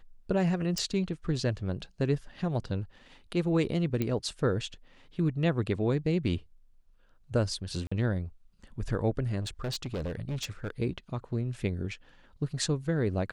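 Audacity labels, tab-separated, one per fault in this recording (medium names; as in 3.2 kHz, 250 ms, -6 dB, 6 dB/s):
0.780000	0.780000	pop -18 dBFS
4.020000	4.020000	pop -17 dBFS
7.870000	7.920000	dropout 45 ms
9.400000	10.700000	clipped -30 dBFS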